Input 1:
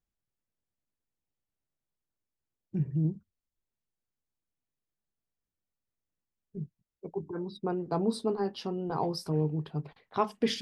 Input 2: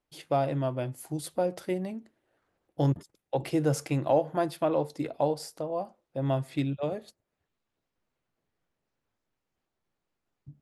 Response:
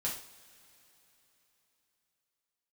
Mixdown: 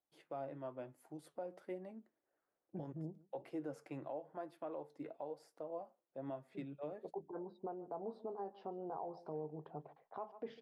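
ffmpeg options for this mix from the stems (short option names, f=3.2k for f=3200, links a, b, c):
-filter_complex "[0:a]bandpass=f=690:t=q:w=2.2:csg=0,aemphasis=mode=reproduction:type=75kf,volume=3dB,asplit=2[a][b];[b]volume=-23.5dB[c];[1:a]acrossover=split=230 2100:gain=0.2 1 0.2[d][e][f];[d][e][f]amix=inputs=3:normalize=0,flanger=delay=2.8:depth=4.7:regen=72:speed=1.1:shape=triangular,volume=-7.5dB[g];[c]aecho=0:1:146:1[h];[a][g][h]amix=inputs=3:normalize=0,alimiter=level_in=10.5dB:limit=-24dB:level=0:latency=1:release=313,volume=-10.5dB"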